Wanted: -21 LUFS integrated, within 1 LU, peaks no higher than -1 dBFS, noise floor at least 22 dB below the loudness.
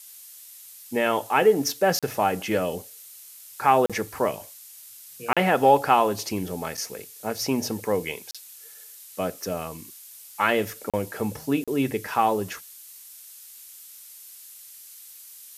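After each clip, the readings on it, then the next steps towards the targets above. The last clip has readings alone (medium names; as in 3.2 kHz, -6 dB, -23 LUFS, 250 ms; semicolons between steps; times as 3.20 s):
dropouts 6; longest dropout 36 ms; noise floor -46 dBFS; noise floor target -47 dBFS; loudness -24.5 LUFS; peak level -4.5 dBFS; loudness target -21.0 LUFS
-> interpolate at 1.99/3.86/5.33/8.31/10.90/11.64 s, 36 ms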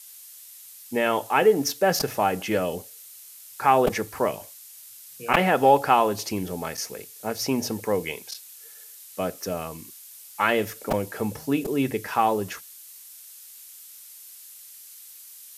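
dropouts 0; noise floor -46 dBFS; noise floor target -47 dBFS
-> noise print and reduce 6 dB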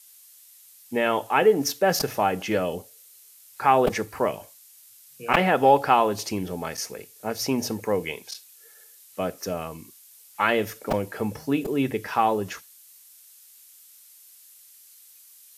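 noise floor -52 dBFS; loudness -24.5 LUFS; peak level -3.5 dBFS; loudness target -21.0 LUFS
-> trim +3.5 dB; peak limiter -1 dBFS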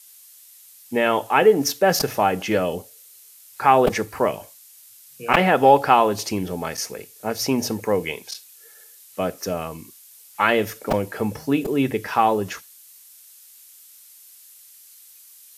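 loudness -21.0 LUFS; peak level -1.0 dBFS; noise floor -48 dBFS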